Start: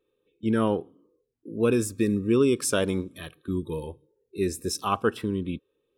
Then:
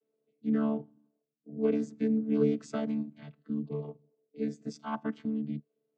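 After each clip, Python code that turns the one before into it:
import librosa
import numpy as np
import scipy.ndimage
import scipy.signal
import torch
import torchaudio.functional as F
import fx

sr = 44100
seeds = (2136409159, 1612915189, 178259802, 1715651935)

y = fx.chord_vocoder(x, sr, chord='bare fifth', root=50)
y = y * librosa.db_to_amplitude(-4.5)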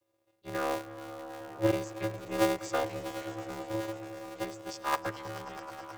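y = scipy.signal.sosfilt(scipy.signal.butter(4, 470.0, 'highpass', fs=sr, output='sos'), x)
y = fx.echo_swell(y, sr, ms=107, loudest=5, wet_db=-16.0)
y = y * np.sign(np.sin(2.0 * np.pi * 110.0 * np.arange(len(y)) / sr))
y = y * librosa.db_to_amplitude(7.0)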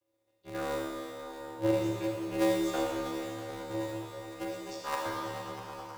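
y = fx.rev_schroeder(x, sr, rt60_s=2.2, comb_ms=27, drr_db=-2.5)
y = y * librosa.db_to_amplitude(-5.0)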